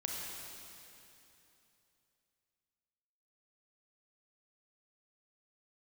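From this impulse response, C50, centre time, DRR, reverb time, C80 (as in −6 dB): −1.0 dB, 150 ms, −2.0 dB, 3.0 s, 0.5 dB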